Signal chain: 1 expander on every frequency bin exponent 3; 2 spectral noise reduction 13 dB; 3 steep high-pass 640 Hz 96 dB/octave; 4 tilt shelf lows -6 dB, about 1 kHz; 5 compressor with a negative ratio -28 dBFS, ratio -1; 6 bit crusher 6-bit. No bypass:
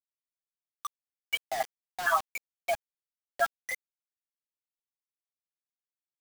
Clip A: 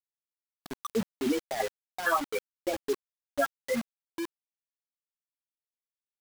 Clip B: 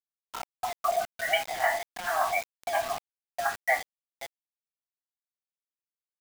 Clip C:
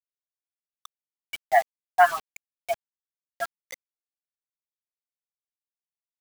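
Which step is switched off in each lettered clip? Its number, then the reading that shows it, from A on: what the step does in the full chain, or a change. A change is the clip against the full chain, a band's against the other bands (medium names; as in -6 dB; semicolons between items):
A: 3, 250 Hz band +29.0 dB; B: 1, 250 Hz band +2.0 dB; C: 5, momentary loudness spread change +4 LU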